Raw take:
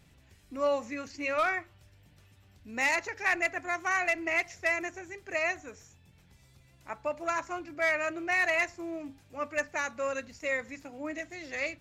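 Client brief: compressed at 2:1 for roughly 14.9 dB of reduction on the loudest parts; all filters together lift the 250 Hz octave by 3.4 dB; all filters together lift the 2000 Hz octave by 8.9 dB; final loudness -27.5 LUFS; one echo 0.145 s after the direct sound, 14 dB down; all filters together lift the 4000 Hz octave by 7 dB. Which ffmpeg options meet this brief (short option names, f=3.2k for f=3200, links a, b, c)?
-af "equalizer=f=250:t=o:g=4.5,equalizer=f=2k:t=o:g=8.5,equalizer=f=4k:t=o:g=6,acompressor=threshold=-44dB:ratio=2,aecho=1:1:145:0.2,volume=9dB"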